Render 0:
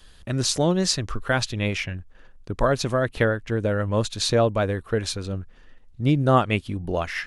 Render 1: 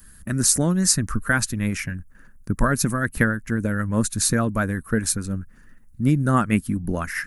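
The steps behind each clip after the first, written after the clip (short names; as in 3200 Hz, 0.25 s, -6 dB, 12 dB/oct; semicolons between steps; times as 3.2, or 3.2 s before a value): harmonic-percussive split harmonic -7 dB; EQ curve 120 Hz 0 dB, 220 Hz +5 dB, 400 Hz -9 dB, 760 Hz -12 dB, 1600 Hz +1 dB, 3300 Hz -17 dB, 11000 Hz +13 dB; gain +6.5 dB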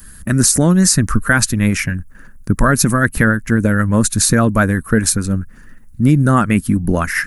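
maximiser +10.5 dB; gain -1 dB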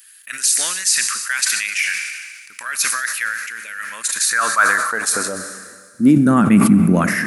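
high-pass sweep 2500 Hz -> 190 Hz, 3.89–6.4; Schroeder reverb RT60 2.9 s, combs from 28 ms, DRR 12 dB; sustainer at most 37 dB/s; gain -4 dB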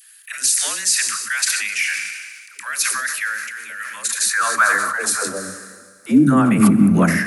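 dispersion lows, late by 0.127 s, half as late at 430 Hz; gain -1 dB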